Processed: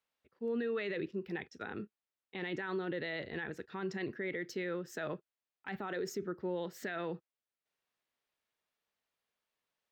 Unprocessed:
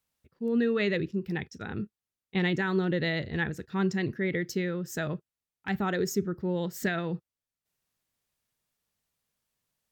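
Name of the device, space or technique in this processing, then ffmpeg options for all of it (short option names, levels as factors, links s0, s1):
DJ mixer with the lows and highs turned down: -filter_complex "[0:a]acrossover=split=290 4200:gain=0.178 1 0.224[s0][s1][s2];[s0][s1][s2]amix=inputs=3:normalize=0,alimiter=level_in=1.58:limit=0.0631:level=0:latency=1:release=27,volume=0.631,volume=0.891"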